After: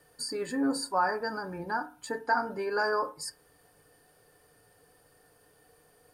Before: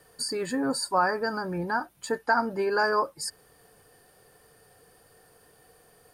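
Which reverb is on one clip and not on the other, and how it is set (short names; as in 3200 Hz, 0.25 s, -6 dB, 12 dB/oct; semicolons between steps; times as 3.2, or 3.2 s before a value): FDN reverb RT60 0.38 s, low-frequency decay 1.05×, high-frequency decay 0.4×, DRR 7.5 dB; gain -5 dB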